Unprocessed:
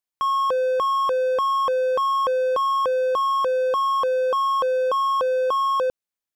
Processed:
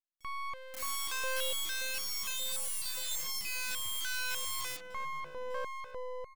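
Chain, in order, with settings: Doppler pass-by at 2.74 s, 6 m/s, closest 2.9 m; integer overflow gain 29 dB; three bands offset in time highs, mids, lows 40/740 ms, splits 690/4700 Hz; half-wave rectifier; trim +2 dB

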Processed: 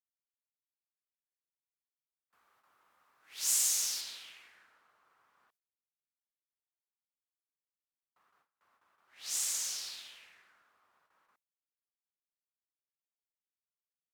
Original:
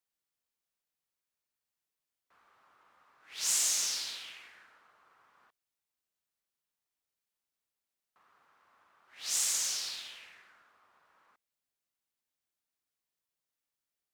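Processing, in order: gate with hold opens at -58 dBFS; peaking EQ 15 kHz +12 dB 1.2 oct, from 4.01 s +5 dB; trim -5.5 dB

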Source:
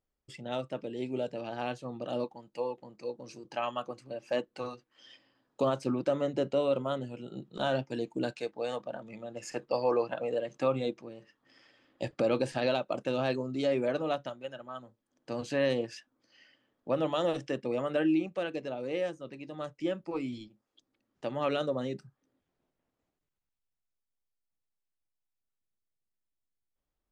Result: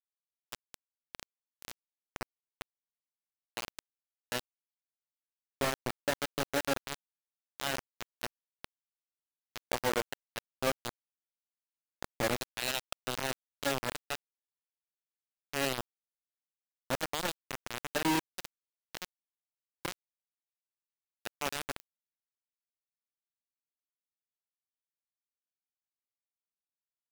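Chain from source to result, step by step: 12.40–13.08 s: tilt shelf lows -9 dB, about 870 Hz; bit crusher 4-bit; clicks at 21.80 s, -22 dBFS; trim -5 dB

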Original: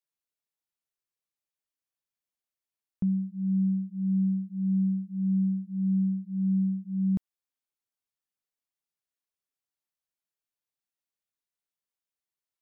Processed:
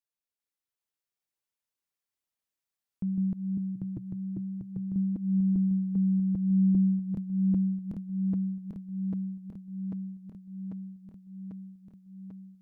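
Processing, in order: backward echo that repeats 397 ms, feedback 83%, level 0 dB; 3.75–4.96 s: graphic EQ with 31 bands 125 Hz +11 dB, 200 Hz -10 dB, 315 Hz +7 dB; trim -4.5 dB

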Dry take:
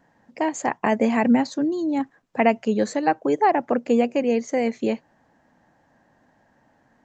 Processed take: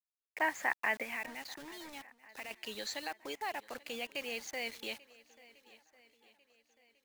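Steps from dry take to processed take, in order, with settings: peak limiter -13.5 dBFS, peak gain reduction 8.5 dB; 1.02–2.51 s: compression 8:1, threshold -27 dBFS, peak gain reduction 10.5 dB; band-pass sweep 1.6 kHz -> 3.6 kHz, 0.24–2.34 s; bit crusher 9-bit; shuffle delay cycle 1396 ms, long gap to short 1.5:1, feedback 34%, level -21.5 dB; trim +4 dB

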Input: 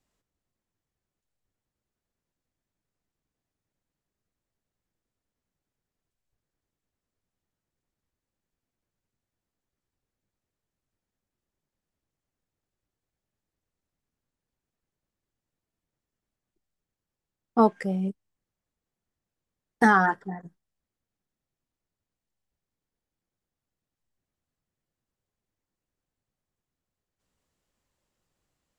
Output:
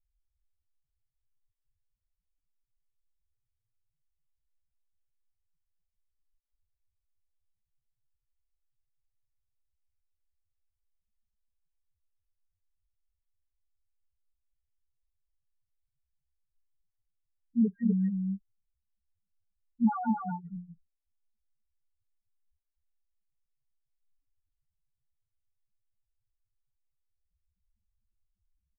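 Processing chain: loudest bins only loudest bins 1; RIAA curve playback; delay 251 ms -4 dB; trim -4 dB

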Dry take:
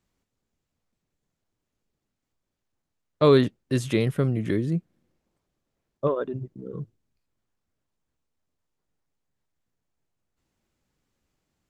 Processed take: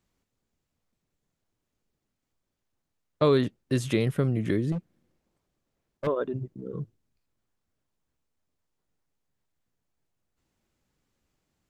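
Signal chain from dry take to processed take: compression 2:1, threshold -21 dBFS, peak gain reduction 5 dB; 4.72–6.07 s: hard clipper -27.5 dBFS, distortion -16 dB

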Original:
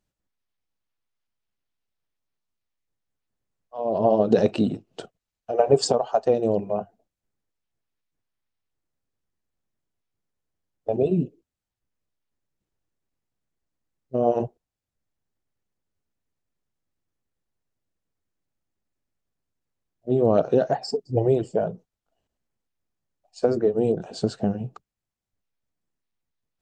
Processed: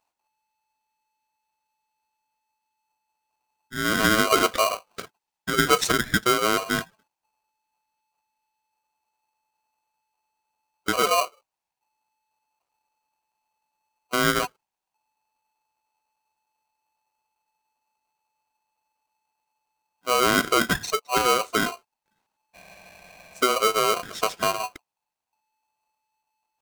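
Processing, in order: spectral replace 22.58–23.55 s, 660–5500 Hz after; in parallel at +0.5 dB: peak limiter -15.5 dBFS, peak gain reduction 10.5 dB; on the sum: tempo 1×; polarity switched at an audio rate 870 Hz; trim -5 dB

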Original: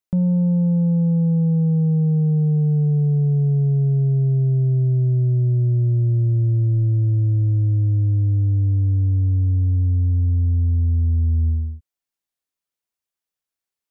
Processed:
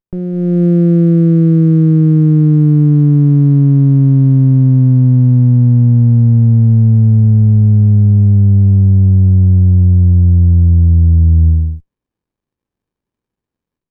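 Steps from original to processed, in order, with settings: level rider gain up to 13 dB; sliding maximum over 65 samples; trim -1 dB

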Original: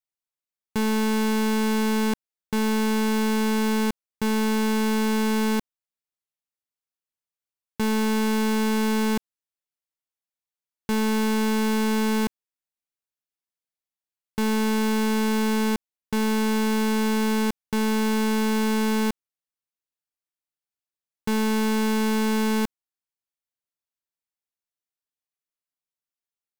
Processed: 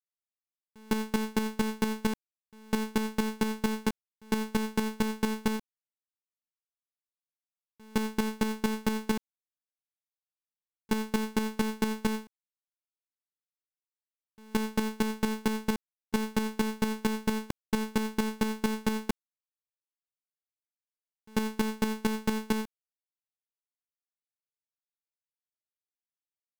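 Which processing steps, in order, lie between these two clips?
square tremolo 4.4 Hz, depth 60%, duty 10%; gate with hold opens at -23 dBFS

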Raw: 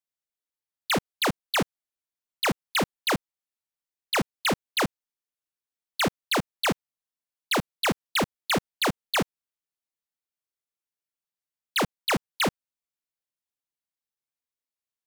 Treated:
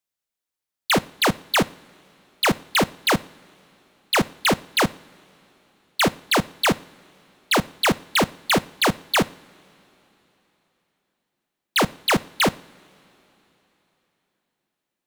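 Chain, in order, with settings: two-slope reverb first 0.54 s, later 3.9 s, from -18 dB, DRR 17.5 dB; trim +5.5 dB

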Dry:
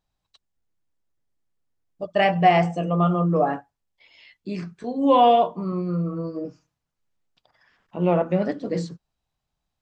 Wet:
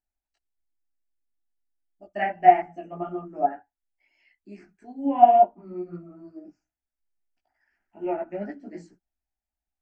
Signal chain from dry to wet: static phaser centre 740 Hz, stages 8; chorus voices 6, 1.4 Hz, delay 17 ms, depth 3 ms; low-pass that closes with the level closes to 2 kHz, closed at -19.5 dBFS; upward expansion 1.5:1, over -35 dBFS; trim +4 dB

